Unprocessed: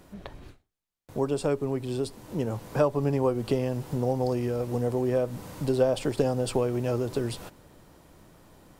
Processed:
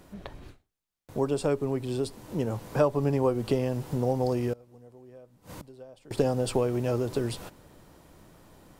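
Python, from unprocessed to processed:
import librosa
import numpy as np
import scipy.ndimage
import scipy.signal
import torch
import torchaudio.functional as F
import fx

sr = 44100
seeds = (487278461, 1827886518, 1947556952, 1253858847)

y = fx.gate_flip(x, sr, shuts_db=-29.0, range_db=-24, at=(4.53, 6.11))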